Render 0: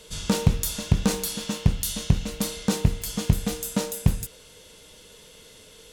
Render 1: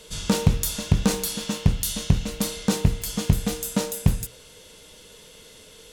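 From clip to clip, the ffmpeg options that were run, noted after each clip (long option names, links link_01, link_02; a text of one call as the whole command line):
ffmpeg -i in.wav -af "bandreject=frequency=60:width_type=h:width=6,bandreject=frequency=120:width_type=h:width=6,volume=1.5dB" out.wav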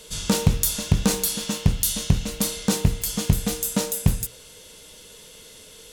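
ffmpeg -i in.wav -af "highshelf=frequency=5400:gain=6" out.wav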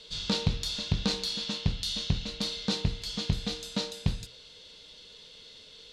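ffmpeg -i in.wav -af "lowpass=frequency=4100:width_type=q:width=3.8,volume=-9dB" out.wav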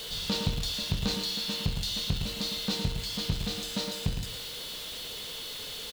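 ffmpeg -i in.wav -filter_complex "[0:a]aeval=exprs='val(0)+0.5*0.0251*sgn(val(0))':channel_layout=same,aeval=exprs='val(0)+0.00708*sin(2*PI*3000*n/s)':channel_layout=same,asplit=2[link_01][link_02];[link_02]adelay=110.8,volume=-7dB,highshelf=frequency=4000:gain=-2.49[link_03];[link_01][link_03]amix=inputs=2:normalize=0,volume=-3.5dB" out.wav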